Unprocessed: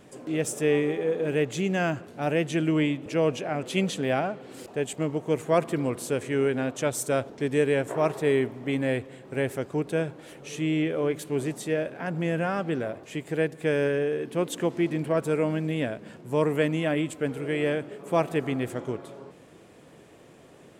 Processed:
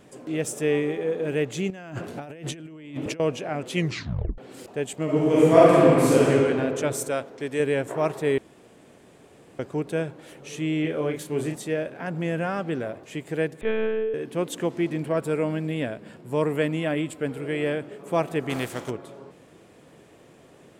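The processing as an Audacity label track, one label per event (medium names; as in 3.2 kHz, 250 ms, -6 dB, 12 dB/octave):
1.700000	3.200000	compressor with a negative ratio -37 dBFS
3.740000	3.740000	tape stop 0.64 s
5.040000	6.290000	reverb throw, RT60 2.5 s, DRR -9 dB
7.080000	7.600000	bass shelf 250 Hz -10 dB
8.380000	9.590000	room tone
10.810000	11.560000	doubling 33 ms -5.5 dB
13.610000	14.140000	monotone LPC vocoder at 8 kHz 220 Hz
15.090000	17.830000	band-stop 6.2 kHz, Q 8.4
18.490000	18.890000	spectral contrast reduction exponent 0.65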